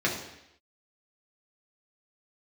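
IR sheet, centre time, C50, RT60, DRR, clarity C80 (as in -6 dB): 34 ms, 6.0 dB, 0.80 s, -3.5 dB, 8.5 dB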